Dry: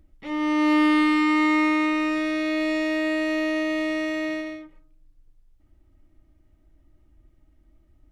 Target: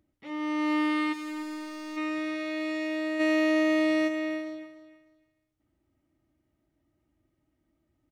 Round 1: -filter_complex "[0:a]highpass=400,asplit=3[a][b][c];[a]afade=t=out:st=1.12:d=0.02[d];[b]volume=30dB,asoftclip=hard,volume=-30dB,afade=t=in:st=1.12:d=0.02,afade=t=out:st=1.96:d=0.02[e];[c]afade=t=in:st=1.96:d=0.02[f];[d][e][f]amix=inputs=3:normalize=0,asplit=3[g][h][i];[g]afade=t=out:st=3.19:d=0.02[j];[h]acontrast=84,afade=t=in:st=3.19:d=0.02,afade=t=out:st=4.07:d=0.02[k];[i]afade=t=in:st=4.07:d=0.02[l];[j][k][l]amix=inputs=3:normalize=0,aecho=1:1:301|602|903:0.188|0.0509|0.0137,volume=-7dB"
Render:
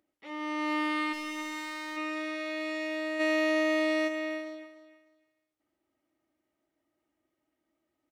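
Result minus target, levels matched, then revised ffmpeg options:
125 Hz band -9.0 dB
-filter_complex "[0:a]highpass=120,asplit=3[a][b][c];[a]afade=t=out:st=1.12:d=0.02[d];[b]volume=30dB,asoftclip=hard,volume=-30dB,afade=t=in:st=1.12:d=0.02,afade=t=out:st=1.96:d=0.02[e];[c]afade=t=in:st=1.96:d=0.02[f];[d][e][f]amix=inputs=3:normalize=0,asplit=3[g][h][i];[g]afade=t=out:st=3.19:d=0.02[j];[h]acontrast=84,afade=t=in:st=3.19:d=0.02,afade=t=out:st=4.07:d=0.02[k];[i]afade=t=in:st=4.07:d=0.02[l];[j][k][l]amix=inputs=3:normalize=0,aecho=1:1:301|602|903:0.188|0.0509|0.0137,volume=-7dB"

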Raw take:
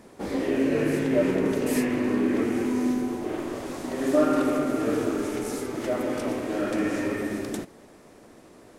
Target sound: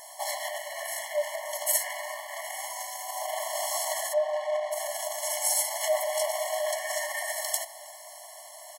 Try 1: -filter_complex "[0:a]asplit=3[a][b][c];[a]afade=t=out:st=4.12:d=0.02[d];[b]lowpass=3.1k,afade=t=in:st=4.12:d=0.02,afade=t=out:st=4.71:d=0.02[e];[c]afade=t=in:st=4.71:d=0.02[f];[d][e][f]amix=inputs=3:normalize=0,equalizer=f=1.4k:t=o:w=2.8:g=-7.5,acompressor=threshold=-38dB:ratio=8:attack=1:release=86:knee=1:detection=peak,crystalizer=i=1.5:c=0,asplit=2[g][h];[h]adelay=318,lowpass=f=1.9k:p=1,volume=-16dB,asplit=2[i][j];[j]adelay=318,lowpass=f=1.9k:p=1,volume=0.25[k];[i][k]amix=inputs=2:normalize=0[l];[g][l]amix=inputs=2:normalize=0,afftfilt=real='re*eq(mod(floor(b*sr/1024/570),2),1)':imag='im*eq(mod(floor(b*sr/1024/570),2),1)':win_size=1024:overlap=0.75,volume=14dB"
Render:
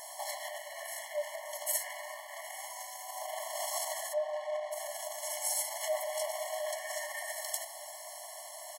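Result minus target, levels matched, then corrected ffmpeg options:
compressor: peak gain reduction +7 dB
-filter_complex "[0:a]asplit=3[a][b][c];[a]afade=t=out:st=4.12:d=0.02[d];[b]lowpass=3.1k,afade=t=in:st=4.12:d=0.02,afade=t=out:st=4.71:d=0.02[e];[c]afade=t=in:st=4.71:d=0.02[f];[d][e][f]amix=inputs=3:normalize=0,equalizer=f=1.4k:t=o:w=2.8:g=-7.5,acompressor=threshold=-30dB:ratio=8:attack=1:release=86:knee=1:detection=peak,crystalizer=i=1.5:c=0,asplit=2[g][h];[h]adelay=318,lowpass=f=1.9k:p=1,volume=-16dB,asplit=2[i][j];[j]adelay=318,lowpass=f=1.9k:p=1,volume=0.25[k];[i][k]amix=inputs=2:normalize=0[l];[g][l]amix=inputs=2:normalize=0,afftfilt=real='re*eq(mod(floor(b*sr/1024/570),2),1)':imag='im*eq(mod(floor(b*sr/1024/570),2),1)':win_size=1024:overlap=0.75,volume=14dB"

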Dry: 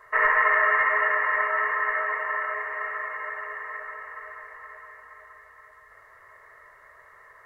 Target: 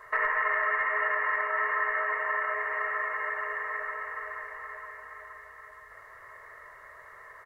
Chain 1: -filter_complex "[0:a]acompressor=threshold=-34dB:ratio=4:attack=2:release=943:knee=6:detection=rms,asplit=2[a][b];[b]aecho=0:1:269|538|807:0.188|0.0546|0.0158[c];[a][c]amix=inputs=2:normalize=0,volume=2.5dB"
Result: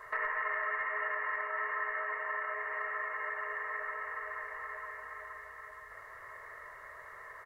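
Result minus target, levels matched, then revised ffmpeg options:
compressor: peak gain reduction +7 dB
-filter_complex "[0:a]acompressor=threshold=-24.5dB:ratio=4:attack=2:release=943:knee=6:detection=rms,asplit=2[a][b];[b]aecho=0:1:269|538|807:0.188|0.0546|0.0158[c];[a][c]amix=inputs=2:normalize=0,volume=2.5dB"

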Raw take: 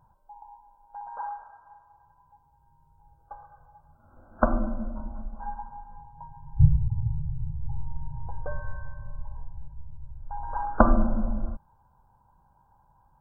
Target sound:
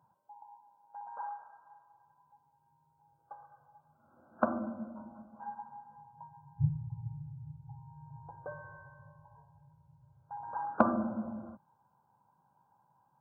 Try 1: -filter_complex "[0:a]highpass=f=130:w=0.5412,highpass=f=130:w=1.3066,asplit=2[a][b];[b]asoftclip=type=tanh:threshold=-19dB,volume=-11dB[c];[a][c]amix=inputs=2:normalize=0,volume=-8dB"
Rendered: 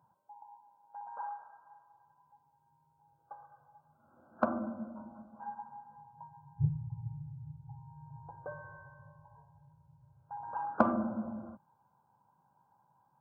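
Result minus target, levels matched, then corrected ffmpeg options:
soft clip: distortion +9 dB
-filter_complex "[0:a]highpass=f=130:w=0.5412,highpass=f=130:w=1.3066,asplit=2[a][b];[b]asoftclip=type=tanh:threshold=-9dB,volume=-11dB[c];[a][c]amix=inputs=2:normalize=0,volume=-8dB"

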